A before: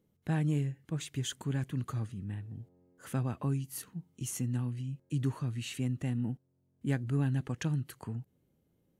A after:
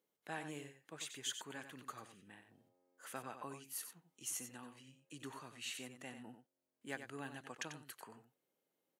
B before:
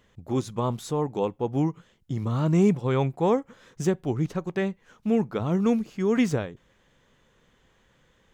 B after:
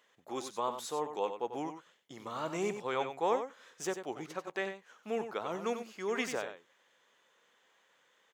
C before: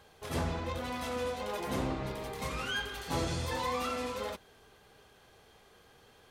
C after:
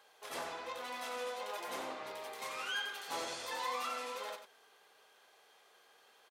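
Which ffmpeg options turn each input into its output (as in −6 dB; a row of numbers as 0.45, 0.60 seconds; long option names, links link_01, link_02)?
-filter_complex "[0:a]highpass=590,asplit=2[link_01][link_02];[link_02]aecho=0:1:93:0.355[link_03];[link_01][link_03]amix=inputs=2:normalize=0,volume=-3dB"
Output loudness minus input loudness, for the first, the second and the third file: −12.5, −10.5, −5.0 LU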